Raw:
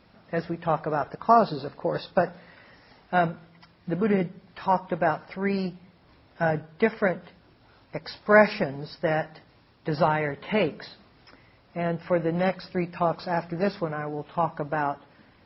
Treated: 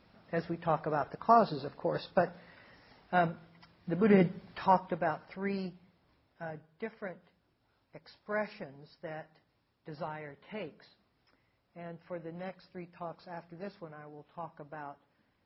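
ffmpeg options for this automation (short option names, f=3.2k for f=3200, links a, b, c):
-af "volume=2dB,afade=t=in:st=3.95:d=0.32:silence=0.421697,afade=t=out:st=4.27:d=0.75:silence=0.298538,afade=t=out:st=5.52:d=0.92:silence=0.354813"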